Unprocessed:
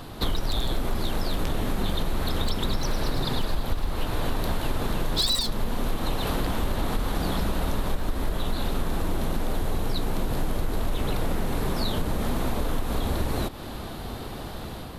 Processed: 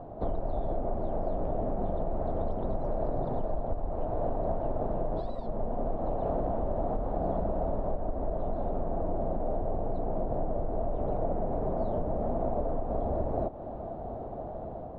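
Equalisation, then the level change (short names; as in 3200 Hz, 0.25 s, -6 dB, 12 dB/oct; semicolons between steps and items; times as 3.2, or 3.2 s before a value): synth low-pass 660 Hz, resonance Q 4.9; -6.5 dB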